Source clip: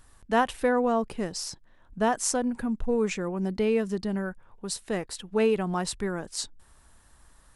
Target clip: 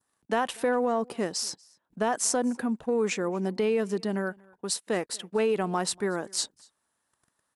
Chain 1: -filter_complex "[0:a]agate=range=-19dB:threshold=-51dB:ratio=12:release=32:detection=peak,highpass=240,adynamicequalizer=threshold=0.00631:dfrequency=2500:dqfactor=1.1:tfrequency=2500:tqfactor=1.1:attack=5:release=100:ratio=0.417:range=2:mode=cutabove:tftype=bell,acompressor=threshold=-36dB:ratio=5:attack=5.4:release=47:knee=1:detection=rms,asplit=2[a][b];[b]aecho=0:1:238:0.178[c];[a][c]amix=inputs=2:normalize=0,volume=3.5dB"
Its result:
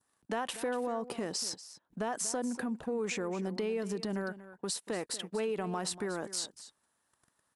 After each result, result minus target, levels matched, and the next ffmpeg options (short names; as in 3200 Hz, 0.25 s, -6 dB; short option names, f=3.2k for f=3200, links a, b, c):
compressor: peak gain reduction +8.5 dB; echo-to-direct +11.5 dB
-filter_complex "[0:a]agate=range=-19dB:threshold=-51dB:ratio=12:release=32:detection=peak,highpass=240,adynamicequalizer=threshold=0.00631:dfrequency=2500:dqfactor=1.1:tfrequency=2500:tqfactor=1.1:attack=5:release=100:ratio=0.417:range=2:mode=cutabove:tftype=bell,acompressor=threshold=-25.5dB:ratio=5:attack=5.4:release=47:knee=1:detection=rms,asplit=2[a][b];[b]aecho=0:1:238:0.178[c];[a][c]amix=inputs=2:normalize=0,volume=3.5dB"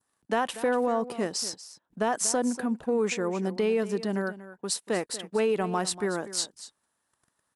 echo-to-direct +11.5 dB
-filter_complex "[0:a]agate=range=-19dB:threshold=-51dB:ratio=12:release=32:detection=peak,highpass=240,adynamicequalizer=threshold=0.00631:dfrequency=2500:dqfactor=1.1:tfrequency=2500:tqfactor=1.1:attack=5:release=100:ratio=0.417:range=2:mode=cutabove:tftype=bell,acompressor=threshold=-25.5dB:ratio=5:attack=5.4:release=47:knee=1:detection=rms,asplit=2[a][b];[b]aecho=0:1:238:0.0473[c];[a][c]amix=inputs=2:normalize=0,volume=3.5dB"